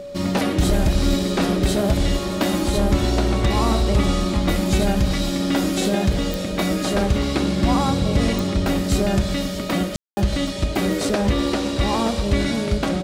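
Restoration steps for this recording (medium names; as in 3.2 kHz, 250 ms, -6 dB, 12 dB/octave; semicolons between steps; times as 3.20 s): de-click; band-stop 570 Hz, Q 30; room tone fill 9.96–10.17 s; inverse comb 627 ms -16.5 dB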